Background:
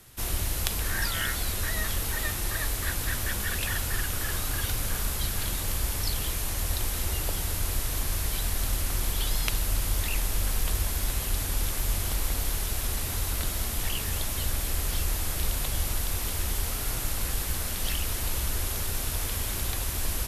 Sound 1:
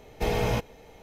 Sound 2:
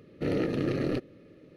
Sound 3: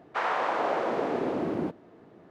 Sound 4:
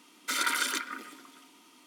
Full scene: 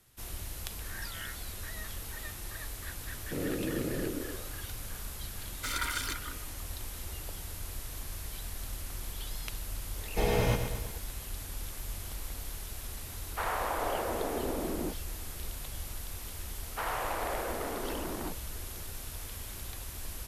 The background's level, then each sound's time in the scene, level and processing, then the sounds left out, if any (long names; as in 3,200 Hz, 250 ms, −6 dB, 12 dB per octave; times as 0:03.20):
background −11.5 dB
0:03.10: mix in 2 −7 dB + echo through a band-pass that steps 129 ms, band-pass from 250 Hz, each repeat 0.7 octaves, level −1 dB
0:05.35: mix in 4 −5.5 dB
0:09.96: mix in 1 −2.5 dB + feedback echo at a low word length 117 ms, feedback 55%, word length 9 bits, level −7.5 dB
0:13.22: mix in 3 −5.5 dB + band-pass filter 110–7,200 Hz
0:16.62: mix in 3 −5.5 dB + saturating transformer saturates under 1,600 Hz